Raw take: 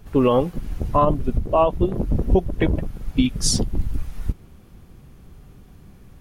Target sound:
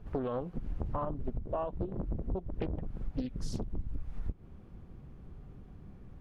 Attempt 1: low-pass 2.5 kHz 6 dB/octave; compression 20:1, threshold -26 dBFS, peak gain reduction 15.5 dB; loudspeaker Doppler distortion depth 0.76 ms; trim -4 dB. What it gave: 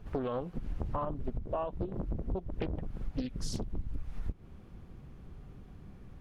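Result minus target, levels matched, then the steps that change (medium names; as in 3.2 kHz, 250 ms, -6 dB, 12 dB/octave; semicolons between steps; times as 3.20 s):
2 kHz band +3.0 dB
change: low-pass 1.1 kHz 6 dB/octave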